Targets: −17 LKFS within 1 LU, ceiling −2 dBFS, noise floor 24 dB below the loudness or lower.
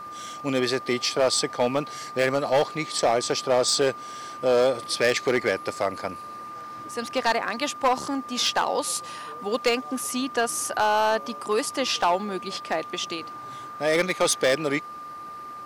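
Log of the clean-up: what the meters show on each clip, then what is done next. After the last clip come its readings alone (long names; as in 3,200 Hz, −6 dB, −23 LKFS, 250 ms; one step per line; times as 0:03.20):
share of clipped samples 1.3%; peaks flattened at −15.0 dBFS; interfering tone 1,200 Hz; level of the tone −36 dBFS; integrated loudness −25.0 LKFS; sample peak −15.0 dBFS; target loudness −17.0 LKFS
→ clipped peaks rebuilt −15 dBFS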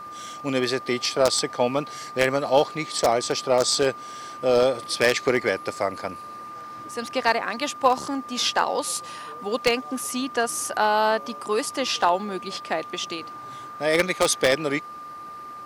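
share of clipped samples 0.0%; interfering tone 1,200 Hz; level of the tone −36 dBFS
→ notch filter 1,200 Hz, Q 30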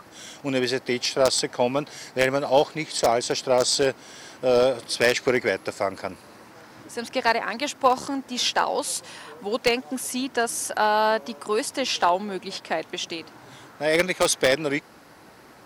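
interfering tone none found; integrated loudness −24.0 LKFS; sample peak −5.5 dBFS; target loudness −17.0 LKFS
→ level +7 dB
brickwall limiter −2 dBFS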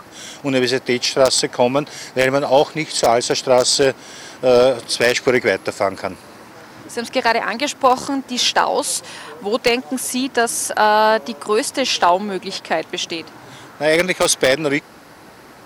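integrated loudness −17.5 LKFS; sample peak −2.0 dBFS; background noise floor −42 dBFS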